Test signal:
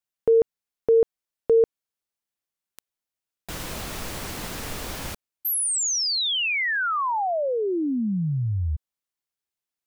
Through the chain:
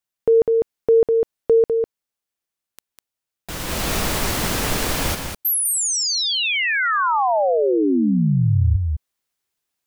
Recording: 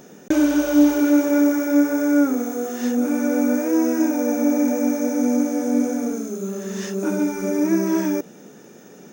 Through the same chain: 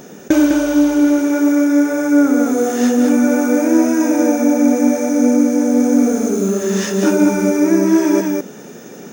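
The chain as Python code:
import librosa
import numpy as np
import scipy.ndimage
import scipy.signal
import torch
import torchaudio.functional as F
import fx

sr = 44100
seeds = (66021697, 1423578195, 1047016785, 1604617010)

p1 = x + fx.echo_single(x, sr, ms=201, db=-4.5, dry=0)
p2 = fx.rider(p1, sr, range_db=5, speed_s=0.5)
y = p2 * librosa.db_to_amplitude(5.0)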